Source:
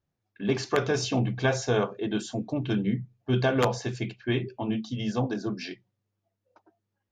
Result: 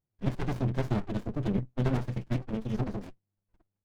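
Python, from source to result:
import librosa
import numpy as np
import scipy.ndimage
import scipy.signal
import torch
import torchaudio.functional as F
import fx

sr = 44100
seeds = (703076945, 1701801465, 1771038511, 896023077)

y = fx.stretch_vocoder(x, sr, factor=0.54)
y = fx.dynamic_eq(y, sr, hz=170.0, q=0.97, threshold_db=-38.0, ratio=4.0, max_db=5)
y = fx.running_max(y, sr, window=65)
y = F.gain(torch.from_numpy(y), -3.0).numpy()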